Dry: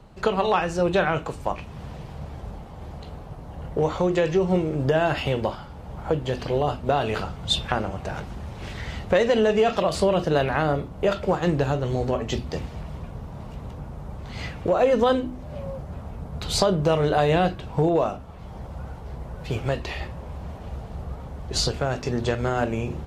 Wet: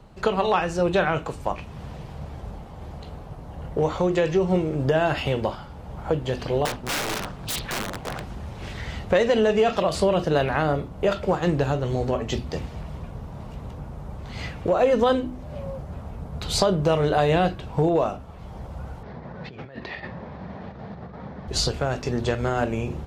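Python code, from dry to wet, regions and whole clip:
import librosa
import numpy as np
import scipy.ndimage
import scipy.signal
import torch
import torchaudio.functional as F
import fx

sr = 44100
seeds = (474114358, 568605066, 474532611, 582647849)

y = fx.chain(x, sr, fx.overflow_wrap(gain_db=21.0),
    fx.peak_eq(hz=79.0, db=-15.0, octaves=0.28),
    fx.doppler_dist(depth_ms=0.74), at=(6.65, 8.22))
y = fx.chain(y, sr, fx.over_compress(threshold_db=-34.0, ratio=-1.0),
    fx.cabinet(low_hz=130.0, low_slope=12, high_hz=4500.0, hz=(200.0, 1800.0, 2900.0), db=(6, 6, -6)), at=(19.03, 21.48))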